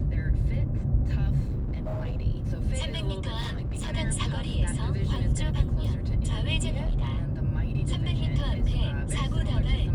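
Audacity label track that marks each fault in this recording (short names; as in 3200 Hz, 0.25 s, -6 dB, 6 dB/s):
1.450000	2.260000	clipped -26.5 dBFS
3.400000	3.930000	clipped -27.5 dBFS
6.790000	7.240000	clipped -22.5 dBFS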